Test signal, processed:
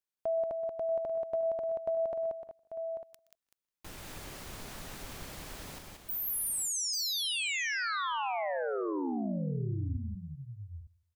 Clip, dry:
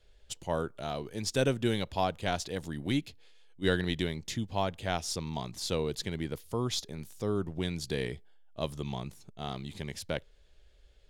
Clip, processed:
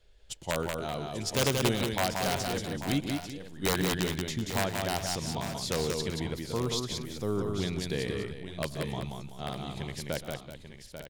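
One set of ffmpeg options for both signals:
-filter_complex "[0:a]asplit=2[a][b];[b]adelay=161,lowpass=f=4.7k:p=1,volume=-23.5dB,asplit=2[c][d];[d]adelay=161,lowpass=f=4.7k:p=1,volume=0.25[e];[c][e]amix=inputs=2:normalize=0[f];[a][f]amix=inputs=2:normalize=0,aeval=exprs='(mod(8.41*val(0)+1,2)-1)/8.41':c=same,asplit=2[g][h];[h]aecho=0:1:122|182|381|841|899:0.133|0.631|0.224|0.299|0.2[i];[g][i]amix=inputs=2:normalize=0"

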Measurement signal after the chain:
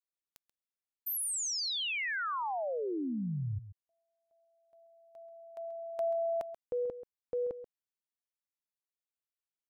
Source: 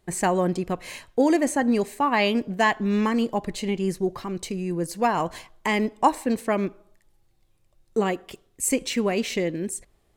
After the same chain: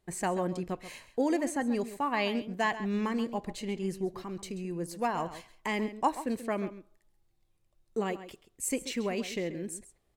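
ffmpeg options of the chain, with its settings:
-filter_complex "[0:a]asplit=2[a][b];[b]adelay=134.1,volume=-13dB,highshelf=f=4k:g=-3.02[c];[a][c]amix=inputs=2:normalize=0,volume=-8.5dB"

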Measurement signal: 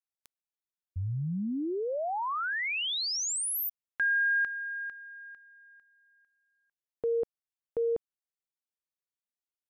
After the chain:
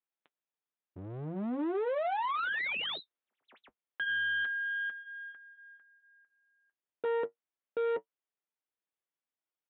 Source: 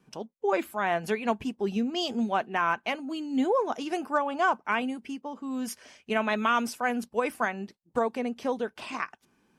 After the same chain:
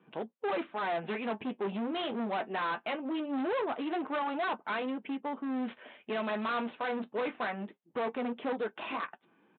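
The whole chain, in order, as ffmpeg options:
-filter_complex "[0:a]asplit=2[a][b];[b]alimiter=limit=-24dB:level=0:latency=1:release=274,volume=2dB[c];[a][c]amix=inputs=2:normalize=0,aeval=exprs='0.299*(cos(1*acos(clip(val(0)/0.299,-1,1)))-cos(1*PI/2))+0.0106*(cos(7*acos(clip(val(0)/0.299,-1,1)))-cos(7*PI/2))+0.0211*(cos(8*acos(clip(val(0)/0.299,-1,1)))-cos(8*PI/2))':c=same,flanger=delay=6:depth=4.1:regen=-52:speed=0.22:shape=sinusoidal,aresample=8000,asoftclip=type=hard:threshold=-31.5dB,aresample=44100,highpass=240,aemphasis=mode=reproduction:type=75kf,volume=3dB"

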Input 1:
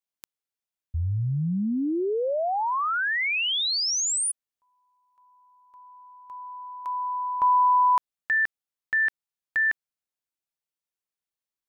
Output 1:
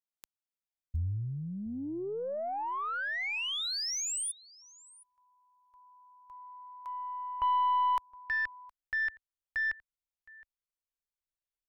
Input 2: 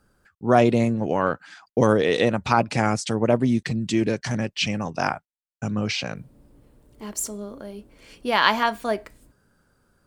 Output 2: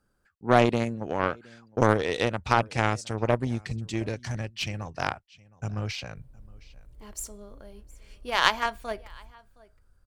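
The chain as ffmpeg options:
-af "asubboost=boost=10.5:cutoff=67,aecho=1:1:716:0.0841,aeval=exprs='0.794*(cos(1*acos(clip(val(0)/0.794,-1,1)))-cos(1*PI/2))+0.0794*(cos(3*acos(clip(val(0)/0.794,-1,1)))-cos(3*PI/2))+0.0355*(cos(6*acos(clip(val(0)/0.794,-1,1)))-cos(6*PI/2))+0.0398*(cos(7*acos(clip(val(0)/0.794,-1,1)))-cos(7*PI/2))+0.0251*(cos(8*acos(clip(val(0)/0.794,-1,1)))-cos(8*PI/2))':c=same"

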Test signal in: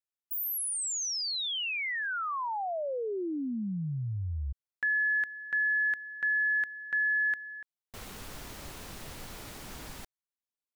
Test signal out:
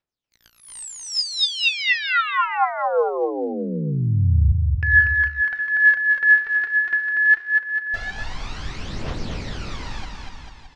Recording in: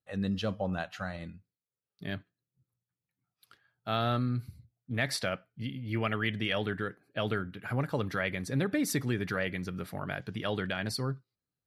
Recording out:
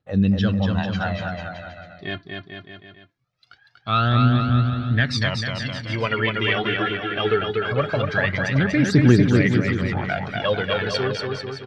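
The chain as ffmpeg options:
-af "aphaser=in_gain=1:out_gain=1:delay=3:decay=0.72:speed=0.22:type=triangular,lowpass=f=5.4k:w=0.5412,lowpass=f=5.4k:w=1.3066,aecho=1:1:240|444|617.4|764.8|890.1:0.631|0.398|0.251|0.158|0.1,volume=6.5dB"

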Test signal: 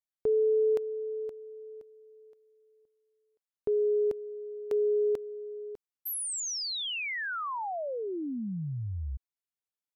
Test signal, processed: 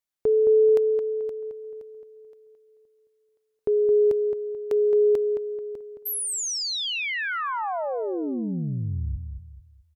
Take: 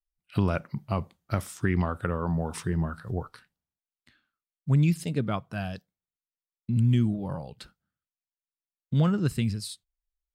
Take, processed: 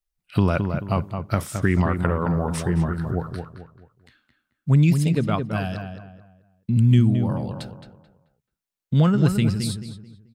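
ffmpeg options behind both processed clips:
-filter_complex "[0:a]asplit=2[a][b];[b]adelay=218,lowpass=f=2.2k:p=1,volume=-6.5dB,asplit=2[c][d];[d]adelay=218,lowpass=f=2.2k:p=1,volume=0.35,asplit=2[e][f];[f]adelay=218,lowpass=f=2.2k:p=1,volume=0.35,asplit=2[g][h];[h]adelay=218,lowpass=f=2.2k:p=1,volume=0.35[i];[a][c][e][g][i]amix=inputs=5:normalize=0,volume=5.5dB"

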